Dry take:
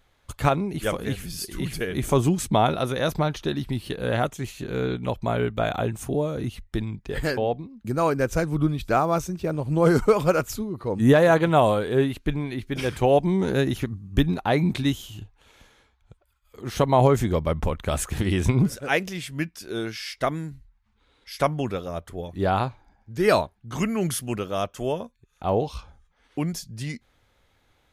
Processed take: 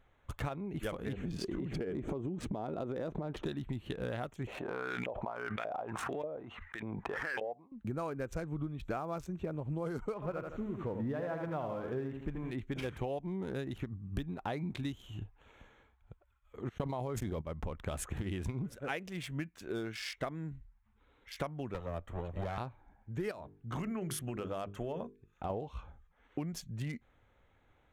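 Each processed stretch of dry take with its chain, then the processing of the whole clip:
1.13–3.45 s: low-pass 6.2 kHz + peaking EQ 350 Hz +14 dB 2.9 oct + compression, threshold -23 dBFS
4.47–7.72 s: LFO band-pass saw up 1.7 Hz 510–2200 Hz + swell ahead of each attack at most 21 dB/s
10.14–12.51 s: zero-crossing glitches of -24 dBFS + low-pass 2.1 kHz + bit-crushed delay 80 ms, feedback 35%, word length 8-bit, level -6.5 dB
16.69–17.42 s: gate -26 dBFS, range -54 dB + level flattener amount 100%
21.74–22.58 s: comb filter that takes the minimum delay 1.6 ms + three bands compressed up and down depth 40%
23.31–25.50 s: hum notches 50/100/150/200/250/300/350/400/450 Hz + compression 8:1, threshold -26 dBFS
whole clip: local Wiener filter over 9 samples; compression 12:1, threshold -31 dBFS; trim -3 dB

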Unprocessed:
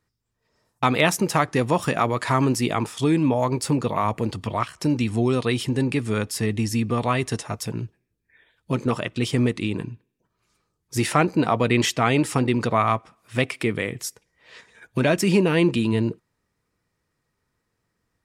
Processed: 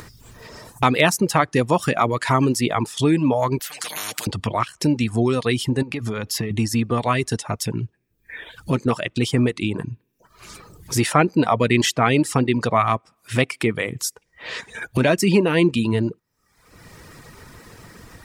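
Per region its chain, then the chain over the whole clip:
3.59–4.27 s: high-pass 990 Hz + comb 6.6 ms, depth 87% + spectrum-flattening compressor 10:1
5.82–6.51 s: peaking EQ 8.6 kHz -12.5 dB 0.3 oct + compression 12:1, threshold -24 dBFS
whole clip: reverb removal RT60 0.62 s; upward compressor, threshold -22 dBFS; trim +3 dB

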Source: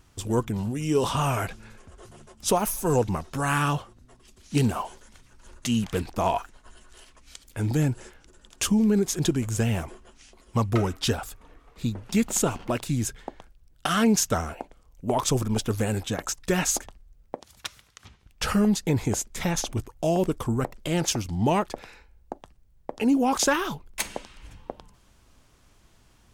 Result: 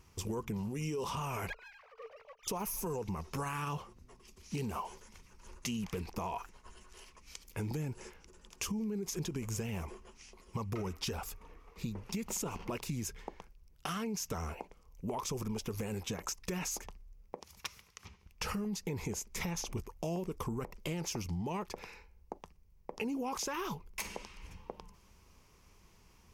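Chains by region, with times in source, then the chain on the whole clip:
1.50–2.48 s: formants replaced by sine waves + rippled Chebyshev high-pass 430 Hz, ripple 6 dB + sliding maximum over 5 samples
whole clip: rippled EQ curve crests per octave 0.81, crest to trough 7 dB; peak limiter -19.5 dBFS; compression, threshold -30 dBFS; trim -4 dB

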